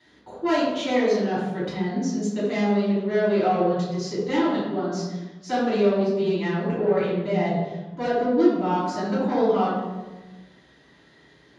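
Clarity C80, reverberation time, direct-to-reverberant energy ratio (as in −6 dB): 2.5 dB, 1.2 s, −11.0 dB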